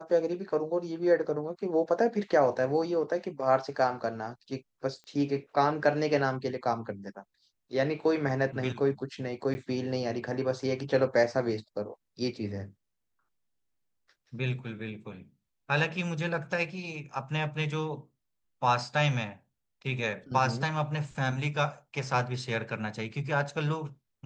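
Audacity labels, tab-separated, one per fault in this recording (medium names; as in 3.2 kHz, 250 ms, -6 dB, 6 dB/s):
5.040000	5.040000	pop -37 dBFS
9.540000	9.550000	dropout 10 ms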